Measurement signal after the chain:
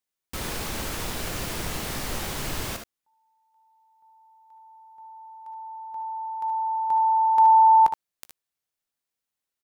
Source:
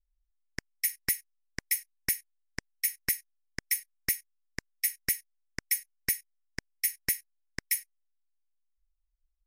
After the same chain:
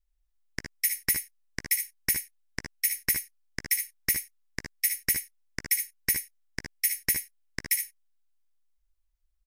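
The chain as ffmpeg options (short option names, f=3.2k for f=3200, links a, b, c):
-af "aecho=1:1:17|61|74:0.141|0.282|0.398,volume=2.5dB"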